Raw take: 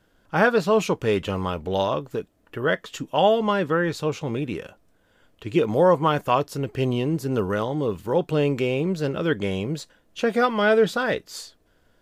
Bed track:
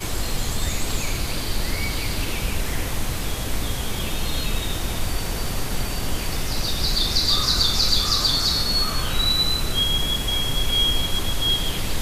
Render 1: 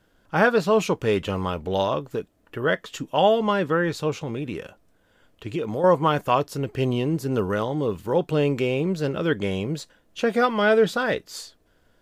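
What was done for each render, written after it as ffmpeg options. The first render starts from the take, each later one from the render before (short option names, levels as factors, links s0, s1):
-filter_complex "[0:a]asettb=1/sr,asplit=3[s0][s1][s2];[s0]atrim=end=4.164[s3];[s1]atrim=start=4.16:end=5.84,asetpts=PTS-STARTPTS,afade=t=in:d=0.004:c=qsin,afade=t=out:st=1.676:d=0.004:c=qsin,acompressor=threshold=0.0501:ratio=2.5:attack=3.2:release=140:knee=1:detection=peak[s4];[s2]atrim=start=5.836[s5];[s3][s4]acrossfade=d=0.004:c1=hsin:c2=qsin[s6];[s6][s5]acrossfade=d=0.004:c1=qsin:c2=hsin"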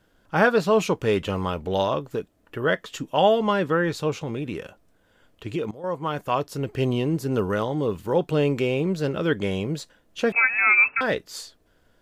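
-filter_complex "[0:a]asettb=1/sr,asplit=3[s0][s1][s2];[s0]atrim=end=10.324[s3];[s1]atrim=start=10.32:end=11.01,asetpts=PTS-STARTPTS,afade=t=in:d=0.004:c=qsin,afade=t=out:st=0.686:d=0.004:c=qsin,lowpass=f=2400:t=q:w=0.5098,lowpass=f=2400:t=q:w=0.6013,lowpass=f=2400:t=q:w=0.9,lowpass=f=2400:t=q:w=2.563,afreqshift=-2800[s4];[s2]atrim=start=11.006[s5];[s3][s4]acrossfade=d=0.004:c1=hsin:c2=qsin[s6];[s6][s5]acrossfade=d=0.004:c1=qsin:c2=hsin,asplit=2[s7][s8];[s7]atrim=end=5.71,asetpts=PTS-STARTPTS,afade=t=out:st=5.706:d=0.004:c=hsin:silence=0.125893[s9];[s8]atrim=start=5.71,asetpts=PTS-STARTPTS,afade=t=in:d=1:silence=0.125893[s10];[s9][s10]concat=n=2:v=0:a=1"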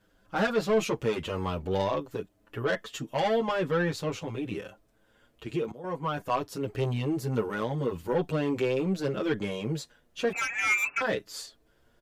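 -filter_complex "[0:a]asoftclip=type=tanh:threshold=0.126,asplit=2[s0][s1];[s1]adelay=7.5,afreqshift=0.46[s2];[s0][s2]amix=inputs=2:normalize=1"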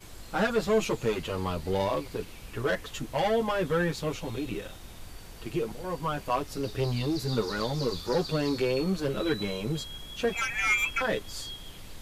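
-filter_complex "[1:a]volume=0.1[s0];[0:a][s0]amix=inputs=2:normalize=0"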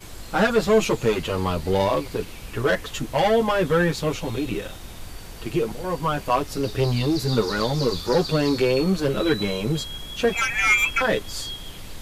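-af "volume=2.24"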